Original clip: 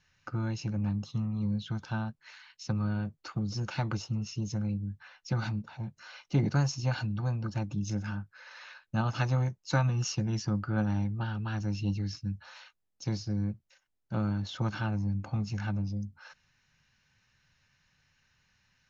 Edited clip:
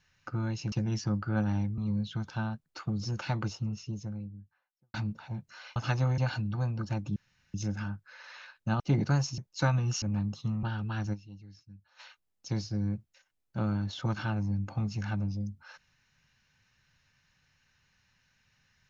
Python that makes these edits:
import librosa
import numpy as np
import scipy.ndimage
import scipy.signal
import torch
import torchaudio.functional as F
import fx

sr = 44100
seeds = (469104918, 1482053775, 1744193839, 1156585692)

y = fx.studio_fade_out(x, sr, start_s=3.8, length_s=1.63)
y = fx.edit(y, sr, fx.swap(start_s=0.72, length_s=0.61, other_s=10.13, other_length_s=1.06),
    fx.cut(start_s=2.21, length_s=0.94),
    fx.swap(start_s=6.25, length_s=0.58, other_s=9.07, other_length_s=0.42),
    fx.insert_room_tone(at_s=7.81, length_s=0.38),
    fx.fade_down_up(start_s=11.69, length_s=0.87, db=-17.5, fade_s=0.17, curve='exp'), tone=tone)